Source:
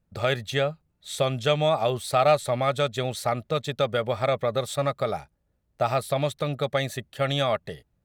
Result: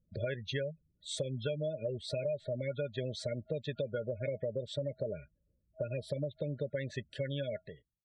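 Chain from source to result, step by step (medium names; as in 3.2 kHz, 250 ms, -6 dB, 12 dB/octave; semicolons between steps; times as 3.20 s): fade out at the end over 0.86 s; FFT band-reject 640–1400 Hz; low-pass that closes with the level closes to 2.7 kHz, closed at -23 dBFS; spectral gate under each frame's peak -20 dB strong; compression 6:1, threshold -29 dBFS, peak gain reduction 11.5 dB; trim -3.5 dB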